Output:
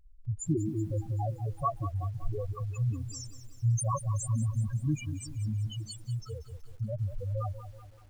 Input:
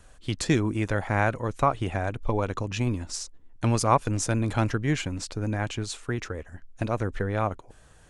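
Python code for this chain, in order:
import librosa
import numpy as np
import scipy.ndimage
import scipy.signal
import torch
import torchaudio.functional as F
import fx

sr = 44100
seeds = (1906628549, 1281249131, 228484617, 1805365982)

y = fx.peak_eq(x, sr, hz=10000.0, db=13.5, octaves=1.7)
y = fx.spec_topn(y, sr, count=2)
y = fx.echo_crushed(y, sr, ms=189, feedback_pct=55, bits=9, wet_db=-12.0)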